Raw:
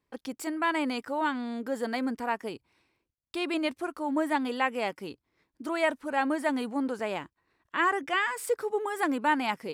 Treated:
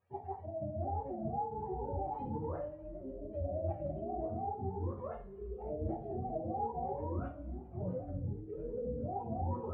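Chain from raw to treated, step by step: spectrum inverted on a logarithmic axis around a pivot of 450 Hz; inverse Chebyshev low-pass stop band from 10 kHz, stop band 70 dB; peaking EQ 190 Hz -11.5 dB 1.9 oct; reverse; compression 5:1, threshold -44 dBFS, peak gain reduction 15 dB; reverse; two-slope reverb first 0.4 s, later 2 s, from -25 dB, DRR -1 dB; ever faster or slower copies 648 ms, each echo -6 st, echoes 2, each echo -6 dB; trim +4 dB

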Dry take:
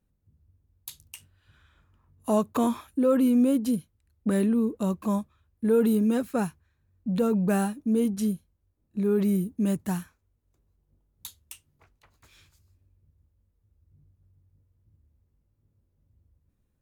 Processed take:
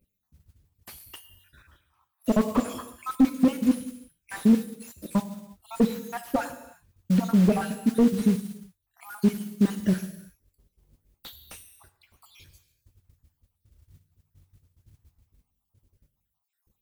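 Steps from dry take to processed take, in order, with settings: random holes in the spectrogram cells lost 70%; treble shelf 11 kHz +12 dB; gated-style reverb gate 380 ms falling, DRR 10 dB; modulation noise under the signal 18 dB; slew-rate limiter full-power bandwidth 27 Hz; trim +7 dB

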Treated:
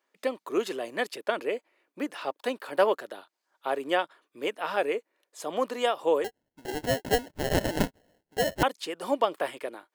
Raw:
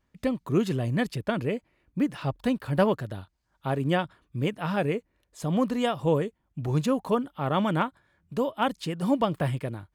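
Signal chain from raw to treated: high-pass 370 Hz 24 dB/octave; 6.24–8.63 s: sample-rate reducer 1.2 kHz, jitter 0%; trim +1.5 dB

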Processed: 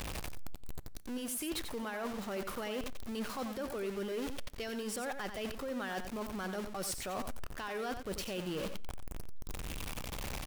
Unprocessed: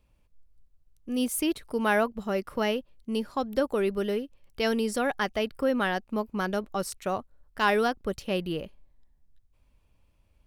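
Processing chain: jump at every zero crossing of -30 dBFS; bass shelf 450 Hz -4.5 dB; peak limiter -22.5 dBFS, peak gain reduction 11.5 dB; reverse; compression, threshold -37 dBFS, peak gain reduction 10.5 dB; reverse; delay 90 ms -8.5 dB; on a send at -21 dB: reverberation RT60 0.75 s, pre-delay 3 ms

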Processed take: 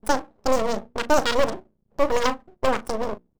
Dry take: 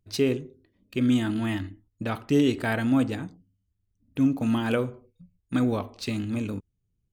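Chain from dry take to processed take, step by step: local Wiener filter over 41 samples; on a send: delay 79 ms -13 dB; on the sum: wide varispeed 2.1×; hum notches 60/120/180/240/300/360 Hz; half-wave rectifier; trim +7.5 dB

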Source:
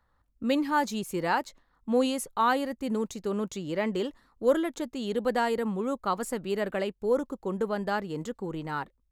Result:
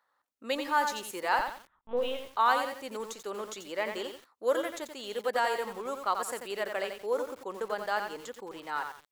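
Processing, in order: high-pass 590 Hz 12 dB/octave; 1.39–2.28 s: LPC vocoder at 8 kHz pitch kept; bit-crushed delay 88 ms, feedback 35%, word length 8-bit, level -6 dB

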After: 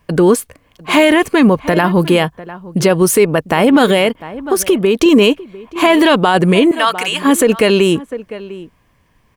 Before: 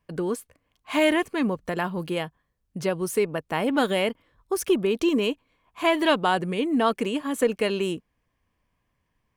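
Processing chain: 1.47–2.01 s: band-stop 7.6 kHz, Q 5.7; 3.89–5.06 s: compression 5:1, threshold -27 dBFS, peak gain reduction 10 dB; 6.71–7.22 s: high-pass 1.2 kHz 12 dB/octave; echo from a far wall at 120 m, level -20 dB; loudness maximiser +19 dB; trim -1 dB

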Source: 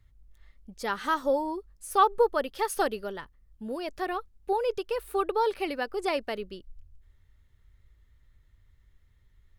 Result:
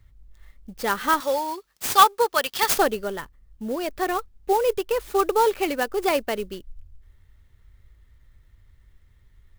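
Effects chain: 1.20–2.78 s: frequency weighting ITU-R 468; sampling jitter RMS 0.028 ms; trim +6.5 dB

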